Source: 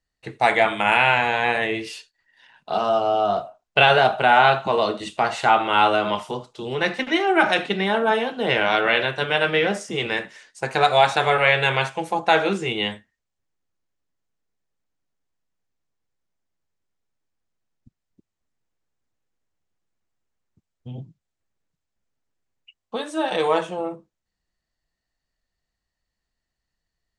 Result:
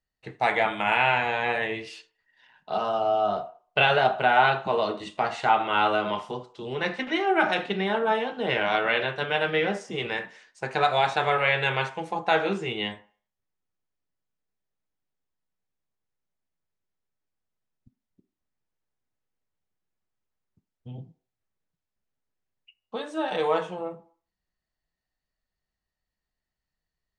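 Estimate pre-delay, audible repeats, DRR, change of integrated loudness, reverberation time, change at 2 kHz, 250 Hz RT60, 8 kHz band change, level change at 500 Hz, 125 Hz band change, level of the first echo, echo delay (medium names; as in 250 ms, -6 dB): 3 ms, no echo, 8.5 dB, -5.0 dB, 0.50 s, -5.0 dB, 0.35 s, no reading, -5.0 dB, -4.5 dB, no echo, no echo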